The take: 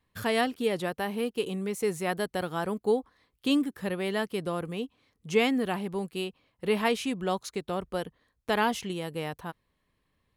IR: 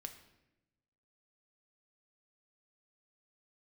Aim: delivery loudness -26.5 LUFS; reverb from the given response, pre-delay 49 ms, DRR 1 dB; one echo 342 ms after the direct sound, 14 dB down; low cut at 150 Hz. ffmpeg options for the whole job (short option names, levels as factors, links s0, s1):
-filter_complex "[0:a]highpass=150,aecho=1:1:342:0.2,asplit=2[s0][s1];[1:a]atrim=start_sample=2205,adelay=49[s2];[s1][s2]afir=irnorm=-1:irlink=0,volume=1.41[s3];[s0][s3]amix=inputs=2:normalize=0,volume=1.19"